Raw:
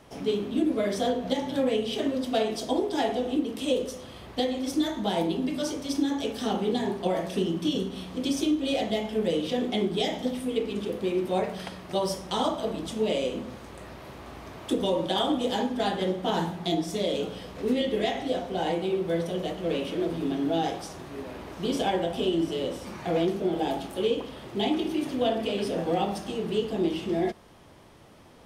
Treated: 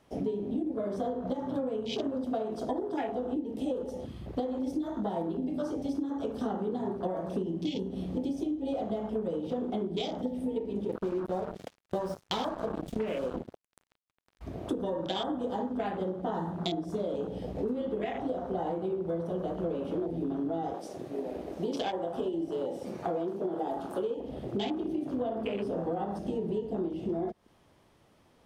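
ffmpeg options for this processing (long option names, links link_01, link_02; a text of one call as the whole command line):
ffmpeg -i in.wav -filter_complex "[0:a]asettb=1/sr,asplit=3[link_01][link_02][link_03];[link_01]atrim=end=10.894[link_04];[link_02]atrim=start=10.89:end=14.41,asetpts=PTS-STARTPTS,afade=type=in:duration=0.004:curve=qsin,afade=type=out:start_time=3.516:duration=0.004:curve=qsin,acrusher=bits=4:mix=0:aa=0.5[link_05];[link_03]atrim=start=14.406[link_06];[link_04][link_05]acrossfade=duration=0.004:curve1=hsin:curve2=qsin[link_07];[link_07][link_06]acrossfade=duration=0.004:curve1=qsin:curve2=hsin,asettb=1/sr,asplit=3[link_08][link_09][link_10];[link_08]atrim=end=20.744[link_11];[link_09]atrim=start=20.74:end=24.2,asetpts=PTS-STARTPTS,afade=type=in:duration=0.004:curve=qsin,afade=type=out:start_time=3.456:duration=0.004:curve=qsin,bass=frequency=250:gain=-8,treble=frequency=4000:gain=3[link_12];[link_10]atrim=start=24.196[link_13];[link_11][link_12]acrossfade=duration=0.004:curve1=hsin:curve2=qsin[link_14];[link_14][link_13]acrossfade=duration=0.004:curve1=qsin:curve2=hsin,afwtdn=0.0178,acompressor=threshold=-35dB:ratio=12,volume=6dB" out.wav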